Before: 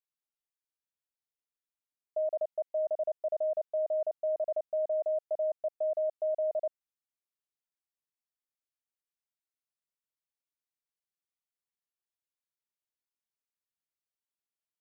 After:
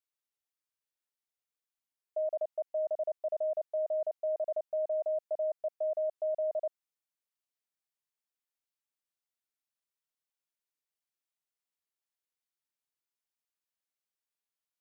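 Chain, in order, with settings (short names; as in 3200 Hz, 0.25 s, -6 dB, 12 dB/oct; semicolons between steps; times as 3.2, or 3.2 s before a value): low shelf 290 Hz -8 dB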